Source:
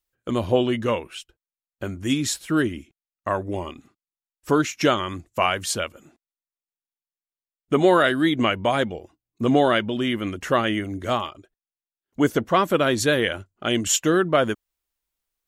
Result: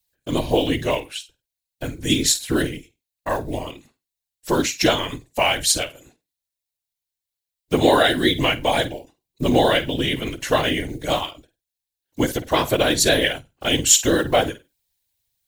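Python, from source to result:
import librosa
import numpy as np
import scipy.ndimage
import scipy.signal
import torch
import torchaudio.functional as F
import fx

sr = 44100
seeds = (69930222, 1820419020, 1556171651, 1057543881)

y = fx.block_float(x, sr, bits=7)
y = fx.high_shelf(y, sr, hz=4700.0, db=7.0)
y = fx.room_flutter(y, sr, wall_m=8.5, rt60_s=0.21)
y = fx.whisperise(y, sr, seeds[0])
y = fx.graphic_eq_31(y, sr, hz=(200, 400, 1250, 4000), db=(-10, -5, -12, 6))
y = fx.end_taper(y, sr, db_per_s=240.0)
y = y * 10.0 ** (3.0 / 20.0)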